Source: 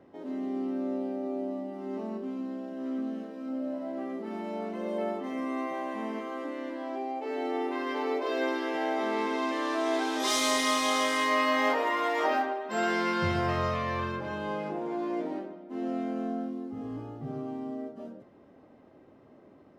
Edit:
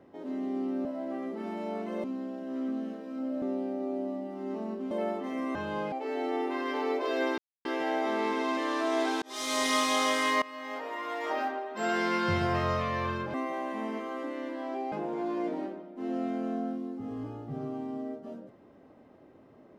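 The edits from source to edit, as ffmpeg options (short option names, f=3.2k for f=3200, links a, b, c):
-filter_complex "[0:a]asplit=12[a][b][c][d][e][f][g][h][i][j][k][l];[a]atrim=end=0.852[m];[b]atrim=start=3.718:end=4.912[n];[c]atrim=start=2.338:end=3.722[o];[d]atrim=start=0.848:end=2.342[p];[e]atrim=start=4.908:end=5.552[q];[f]atrim=start=14.278:end=14.652[r];[g]atrim=start=7.128:end=8.59,asetpts=PTS-STARTPTS,afade=t=out:st=1.458:d=0.004:c=hsin,apad=pad_dur=0.27[s];[h]atrim=start=8.59:end=10.16,asetpts=PTS-STARTPTS,afade=t=in:d=0.004:c=hsin,afade=t=out:st=1.566:d=0.004:c=hsin[t];[i]atrim=start=10.16:end=11.36,asetpts=PTS-STARTPTS,afade=t=in:d=0.48,afade=t=out:st=1.196:d=0.004:c=hsin:silence=0.0891251[u];[j]atrim=start=11.36:end=14.282,asetpts=PTS-STARTPTS,afade=t=in:d=1.72:silence=0.0891251[v];[k]atrim=start=5.548:end=7.132[w];[l]atrim=start=14.648[x];[m][n]acrossfade=d=0.004:c1=hsin:c2=hsin[y];[y][o]acrossfade=d=0.004:c1=hsin:c2=hsin[z];[z][p]acrossfade=d=0.004:c1=hsin:c2=hsin[aa];[aa][q]acrossfade=d=0.004:c1=hsin:c2=hsin[ab];[ab][r]acrossfade=d=0.004:c1=hsin:c2=hsin[ac];[s][t][u][v]concat=n=4:v=0:a=1[ad];[ac][ad]acrossfade=d=0.004:c1=hsin:c2=hsin[ae];[ae][w]acrossfade=d=0.004:c1=hsin:c2=hsin[af];[af][x]acrossfade=d=0.004:c1=hsin:c2=hsin"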